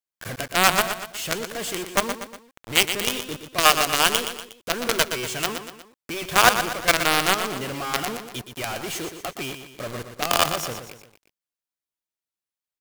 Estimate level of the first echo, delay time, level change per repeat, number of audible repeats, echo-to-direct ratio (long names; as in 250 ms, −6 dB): −9.0 dB, 120 ms, −6.5 dB, 3, −8.0 dB